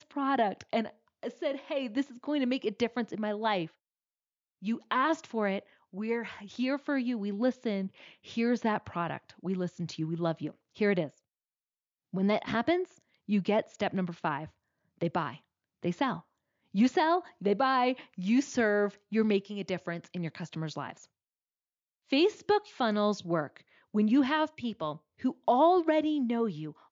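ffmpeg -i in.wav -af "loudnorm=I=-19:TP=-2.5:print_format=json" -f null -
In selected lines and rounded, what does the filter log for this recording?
"input_i" : "-30.5",
"input_tp" : "-16.0",
"input_lra" : "4.9",
"input_thresh" : "-40.9",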